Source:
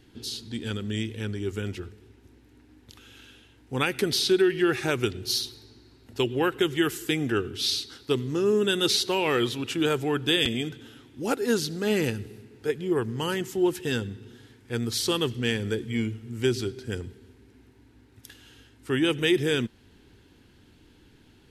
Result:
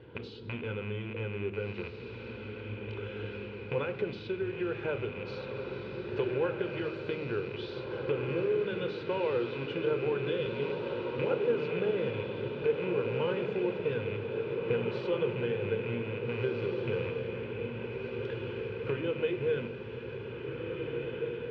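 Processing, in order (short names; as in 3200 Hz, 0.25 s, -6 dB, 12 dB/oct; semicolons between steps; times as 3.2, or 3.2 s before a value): rattling part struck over -38 dBFS, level -23 dBFS; compressor 8:1, threshold -39 dBFS, peak gain reduction 21 dB; speaker cabinet 110–2500 Hz, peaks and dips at 290 Hz -5 dB, 510 Hz +9 dB, 1900 Hz -9 dB; diffused feedback echo 1.777 s, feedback 61%, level -4 dB; reverb RT60 0.85 s, pre-delay 17 ms, DRR 10.5 dB; gain +6 dB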